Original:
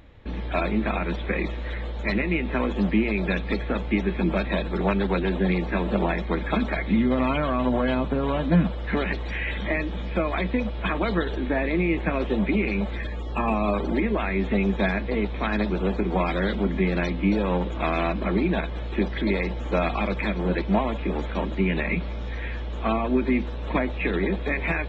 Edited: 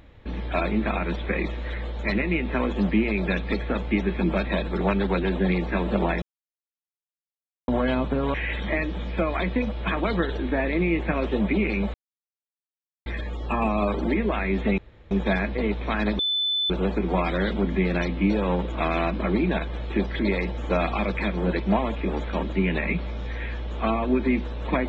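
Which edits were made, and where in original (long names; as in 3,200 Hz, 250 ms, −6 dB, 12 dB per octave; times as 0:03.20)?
0:06.22–0:07.68: silence
0:08.34–0:09.32: remove
0:12.92: splice in silence 1.12 s
0:14.64: splice in room tone 0.33 s
0:15.72: insert tone 3,510 Hz −21.5 dBFS 0.51 s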